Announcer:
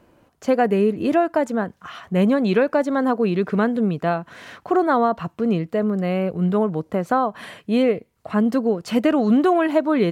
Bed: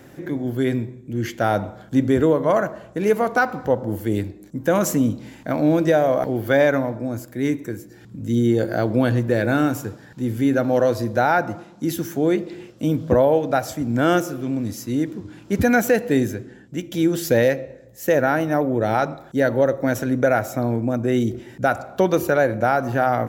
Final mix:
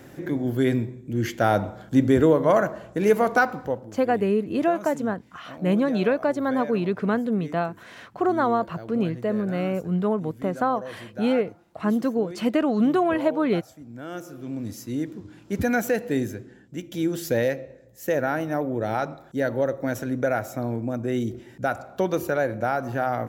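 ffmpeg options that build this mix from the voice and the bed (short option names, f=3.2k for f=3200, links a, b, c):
-filter_complex "[0:a]adelay=3500,volume=-4dB[a];[1:a]volume=12.5dB,afade=t=out:st=3.37:d=0.54:silence=0.11885,afade=t=in:st=14.1:d=0.58:silence=0.223872[b];[a][b]amix=inputs=2:normalize=0"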